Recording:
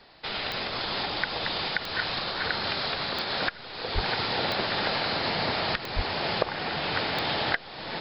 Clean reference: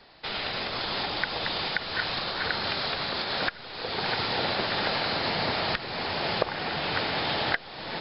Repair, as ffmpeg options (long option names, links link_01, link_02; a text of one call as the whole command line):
ffmpeg -i in.wav -filter_complex "[0:a]adeclick=threshold=4,asplit=3[link_01][link_02][link_03];[link_01]afade=type=out:start_time=3.94:duration=0.02[link_04];[link_02]highpass=frequency=140:width=0.5412,highpass=frequency=140:width=1.3066,afade=type=in:start_time=3.94:duration=0.02,afade=type=out:start_time=4.06:duration=0.02[link_05];[link_03]afade=type=in:start_time=4.06:duration=0.02[link_06];[link_04][link_05][link_06]amix=inputs=3:normalize=0,asplit=3[link_07][link_08][link_09];[link_07]afade=type=out:start_time=5.95:duration=0.02[link_10];[link_08]highpass=frequency=140:width=0.5412,highpass=frequency=140:width=1.3066,afade=type=in:start_time=5.95:duration=0.02,afade=type=out:start_time=6.07:duration=0.02[link_11];[link_09]afade=type=in:start_time=6.07:duration=0.02[link_12];[link_10][link_11][link_12]amix=inputs=3:normalize=0" out.wav